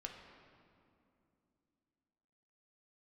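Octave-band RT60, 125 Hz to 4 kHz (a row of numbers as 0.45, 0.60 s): 3.2, 3.7, 2.9, 2.5, 2.0, 1.6 s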